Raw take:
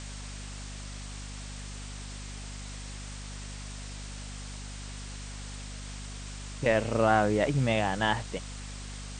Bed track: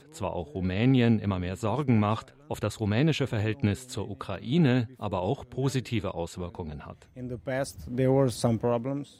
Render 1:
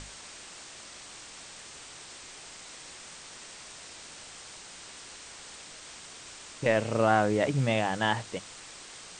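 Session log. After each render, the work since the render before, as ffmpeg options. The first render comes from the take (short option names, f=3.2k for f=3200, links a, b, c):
-af "bandreject=f=50:t=h:w=6,bandreject=f=100:t=h:w=6,bandreject=f=150:t=h:w=6,bandreject=f=200:t=h:w=6,bandreject=f=250:t=h:w=6"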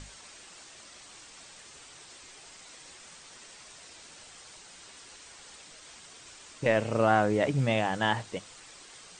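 -af "afftdn=nr=6:nf=-47"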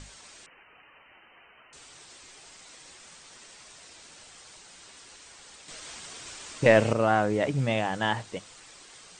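-filter_complex "[0:a]asettb=1/sr,asplit=3[a][b][c];[a]atrim=end=0.464[d];[b]atrim=start=0.46:end=1.73,asetpts=PTS-STARTPTS,afade=t=in:d=0.004:c=qsin,afade=t=out:st=1.266:d=0.004:c=qsin,lowpass=f=2.6k:t=q:w=0.5098,lowpass=f=2.6k:t=q:w=0.6013,lowpass=f=2.6k:t=q:w=0.9,lowpass=f=2.6k:t=q:w=2.563,afreqshift=-3100[e];[c]atrim=start=1.726[f];[d][e]acrossfade=d=0.004:c1=hsin:c2=qsin[g];[g][f]acrossfade=d=0.004:c1=qsin:c2=hsin,asettb=1/sr,asplit=3[h][i][j];[h]atrim=end=5.684[k];[i]atrim=start=5.68:end=6.93,asetpts=PTS-STARTPTS,afade=t=in:d=0.004:c=qsin,afade=t=out:st=1.246:d=0.004:c=qsin,acontrast=85[l];[j]atrim=start=6.926[m];[k][l]acrossfade=d=0.004:c1=hsin:c2=qsin[n];[n][m]acrossfade=d=0.004:c1=qsin:c2=hsin"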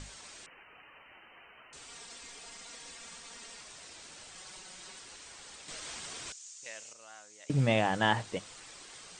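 -filter_complex "[0:a]asettb=1/sr,asplit=3[a][b][c];[a]atrim=end=1.884[d];[b]atrim=start=1.88:end=3.61,asetpts=PTS-STARTPTS,afade=t=in:d=0.004:c=qsin,afade=t=out:st=1.726:d=0.004:c=qsin,aecho=1:1:4.3:0.65,atrim=end_sample=76293[e];[c]atrim=start=3.606[f];[d][e]acrossfade=d=0.004:c1=hsin:c2=qsin[g];[g][f]acrossfade=d=0.004:c1=qsin:c2=hsin,asettb=1/sr,asplit=3[h][i][j];[h]atrim=end=4.354[k];[i]atrim=start=4.35:end=4.99,asetpts=PTS-STARTPTS,afade=t=in:d=0.004:c=qsin,afade=t=out:st=0.636:d=0.004:c=qsin,aecho=1:1:5.4:0.62,atrim=end_sample=28224[l];[j]atrim=start=4.986[m];[k][l]acrossfade=d=0.004:c1=hsin:c2=qsin[n];[n][m]acrossfade=d=0.004:c1=qsin:c2=hsin,asettb=1/sr,asplit=3[o][p][q];[o]atrim=end=6.324[r];[p]atrim=start=6.32:end=7.5,asetpts=PTS-STARTPTS,afade=t=in:d=0.004:c=qsin,afade=t=out:st=1.176:d=0.004:c=qsin,bandpass=f=6.7k:t=q:w=3.7[s];[q]atrim=start=7.496[t];[r][s]acrossfade=d=0.004:c1=hsin:c2=qsin[u];[u][t]acrossfade=d=0.004:c1=qsin:c2=hsin"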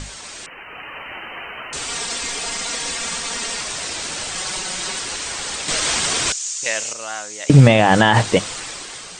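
-af "dynaudnorm=f=210:g=7:m=9dB,alimiter=level_in=14dB:limit=-1dB:release=50:level=0:latency=1"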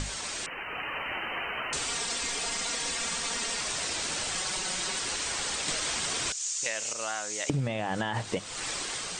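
-af "acompressor=threshold=-29dB:ratio=6"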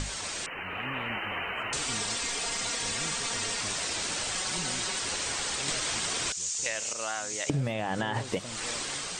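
-filter_complex "[1:a]volume=-19.5dB[a];[0:a][a]amix=inputs=2:normalize=0"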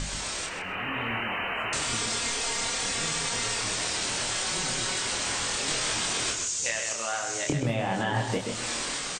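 -filter_complex "[0:a]asplit=2[a][b];[b]adelay=26,volume=-3dB[c];[a][c]amix=inputs=2:normalize=0,asplit=2[d][e];[e]adelay=130,lowpass=f=4.1k:p=1,volume=-5dB,asplit=2[f][g];[g]adelay=130,lowpass=f=4.1k:p=1,volume=0.27,asplit=2[h][i];[i]adelay=130,lowpass=f=4.1k:p=1,volume=0.27,asplit=2[j][k];[k]adelay=130,lowpass=f=4.1k:p=1,volume=0.27[l];[f][h][j][l]amix=inputs=4:normalize=0[m];[d][m]amix=inputs=2:normalize=0"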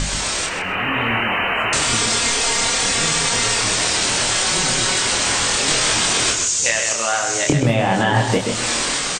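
-af "volume=11dB"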